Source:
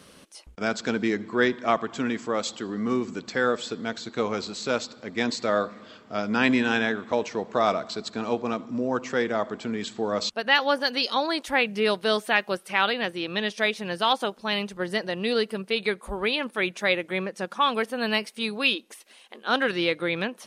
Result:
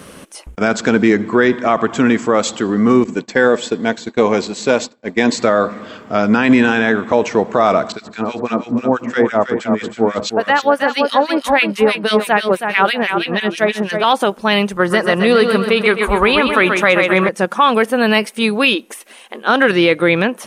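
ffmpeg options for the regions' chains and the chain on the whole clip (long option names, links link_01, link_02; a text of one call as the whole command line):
ffmpeg -i in.wav -filter_complex "[0:a]asettb=1/sr,asplit=3[link_01][link_02][link_03];[link_01]atrim=end=3.044[link_04];[link_02]atrim=start=3.04:end=5.36,asetpts=PTS-STARTPTS,afade=type=in:duration=0.004:curve=qsin,afade=type=out:start_time=2.316:duration=0.004:curve=qsin,agate=range=-33dB:threshold=-34dB:ratio=3:release=100:detection=peak,equalizer=frequency=66:width_type=o:width=1.2:gain=-13,bandreject=frequency=1300:width=5[link_05];[link_03]atrim=start=5.356[link_06];[link_04][link_05]acrossfade=duration=0.004:curve1=hsin:curve2=qsin[link_07];[link_07][link_06]acrossfade=duration=0.004:curve1=qsin:curve2=hsin,asettb=1/sr,asplit=3[link_08][link_09][link_10];[link_08]atrim=end=7.924[link_11];[link_09]atrim=start=7.92:end=14.04,asetpts=PTS-STARTPTS,afade=type=in:duration=0.004:curve=qsin,afade=type=out:start_time=6.116:duration=0.004:curve=qsin,acrossover=split=1500[link_12][link_13];[link_12]aeval=exprs='val(0)*(1-1/2+1/2*cos(2*PI*6.1*n/s))':channel_layout=same[link_14];[link_13]aeval=exprs='val(0)*(1-1/2-1/2*cos(2*PI*6.1*n/s))':channel_layout=same[link_15];[link_14][link_15]amix=inputs=2:normalize=0,aecho=1:1:321|642|963:0.447|0.125|0.035,atrim=end_sample=269892[link_16];[link_10]atrim=start=14.036[link_17];[link_11][link_16]acrossfade=duration=0.004:curve1=hsin:curve2=qsin[link_18];[link_18][link_17]acrossfade=duration=0.004:curve1=qsin:curve2=hsin,asettb=1/sr,asplit=3[link_19][link_20][link_21];[link_19]atrim=end=14.774[link_22];[link_20]atrim=start=14.77:end=17.29,asetpts=PTS-STARTPTS,afade=type=in:duration=0.004:curve=qsin,afade=type=out:start_time=2.516:duration=0.004:curve=qsin,equalizer=frequency=1200:width=2.1:gain=8,aecho=1:1:130|260|390|520|650|780:0.422|0.207|0.101|0.0496|0.0243|0.0119,atrim=end_sample=111132[link_23];[link_21]atrim=start=17.286[link_24];[link_22][link_23]acrossfade=duration=0.004:curve1=hsin:curve2=qsin[link_25];[link_25][link_24]acrossfade=duration=0.004:curve1=qsin:curve2=hsin,equalizer=frequency=4400:width_type=o:width=1.1:gain=-8,alimiter=level_in=16dB:limit=-1dB:release=50:level=0:latency=1,volume=-1dB" out.wav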